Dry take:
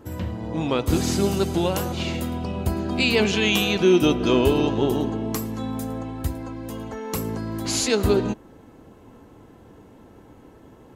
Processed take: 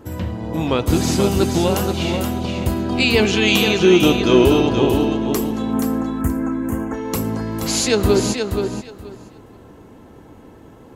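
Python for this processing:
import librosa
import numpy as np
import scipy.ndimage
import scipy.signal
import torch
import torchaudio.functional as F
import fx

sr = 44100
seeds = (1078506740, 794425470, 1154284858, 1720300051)

p1 = fx.quant_dither(x, sr, seeds[0], bits=12, dither='none', at=(2.96, 4.16))
p2 = fx.curve_eq(p1, sr, hz=(110.0, 240.0, 350.0, 590.0, 1500.0, 2500.0, 4100.0, 6800.0), db=(0, 6, 5, -1, 7, -3, -27, 0), at=(5.73, 6.94))
p3 = p2 + fx.echo_feedback(p2, sr, ms=477, feedback_pct=18, wet_db=-6.0, dry=0)
y = F.gain(torch.from_numpy(p3), 4.0).numpy()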